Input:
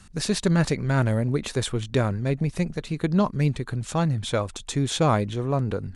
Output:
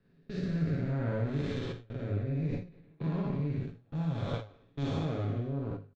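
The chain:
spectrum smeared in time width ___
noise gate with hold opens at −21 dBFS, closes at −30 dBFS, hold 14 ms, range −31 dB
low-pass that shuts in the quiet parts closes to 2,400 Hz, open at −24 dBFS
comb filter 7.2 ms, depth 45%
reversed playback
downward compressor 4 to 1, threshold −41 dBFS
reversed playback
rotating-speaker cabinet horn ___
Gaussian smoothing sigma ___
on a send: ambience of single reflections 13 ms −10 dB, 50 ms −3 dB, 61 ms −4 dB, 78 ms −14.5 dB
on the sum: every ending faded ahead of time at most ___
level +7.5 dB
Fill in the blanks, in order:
344 ms, 0.6 Hz, 1.9 samples, 150 dB per second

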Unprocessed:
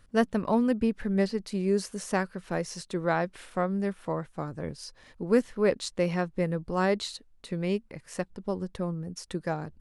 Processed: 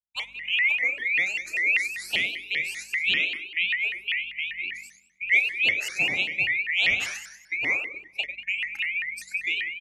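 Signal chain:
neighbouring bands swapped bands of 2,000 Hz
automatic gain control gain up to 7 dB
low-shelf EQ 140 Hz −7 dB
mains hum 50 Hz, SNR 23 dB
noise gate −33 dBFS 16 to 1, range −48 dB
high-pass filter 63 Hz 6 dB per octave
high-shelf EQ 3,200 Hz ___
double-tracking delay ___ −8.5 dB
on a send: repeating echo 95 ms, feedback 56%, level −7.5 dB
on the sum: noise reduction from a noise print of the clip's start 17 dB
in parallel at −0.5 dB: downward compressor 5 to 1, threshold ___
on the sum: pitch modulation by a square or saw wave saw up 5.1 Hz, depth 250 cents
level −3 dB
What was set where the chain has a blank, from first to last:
−10 dB, 36 ms, −34 dBFS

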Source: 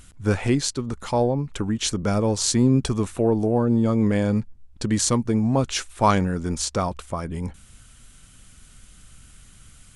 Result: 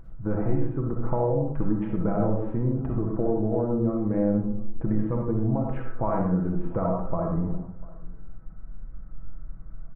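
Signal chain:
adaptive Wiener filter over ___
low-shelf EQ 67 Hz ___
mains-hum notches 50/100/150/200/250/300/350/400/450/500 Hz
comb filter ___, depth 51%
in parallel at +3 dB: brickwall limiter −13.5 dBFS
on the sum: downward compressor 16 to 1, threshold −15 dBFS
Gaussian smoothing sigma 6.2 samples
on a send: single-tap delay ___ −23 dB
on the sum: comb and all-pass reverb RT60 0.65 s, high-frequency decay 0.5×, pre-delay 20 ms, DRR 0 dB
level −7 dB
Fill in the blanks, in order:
15 samples, +6 dB, 6.1 ms, 694 ms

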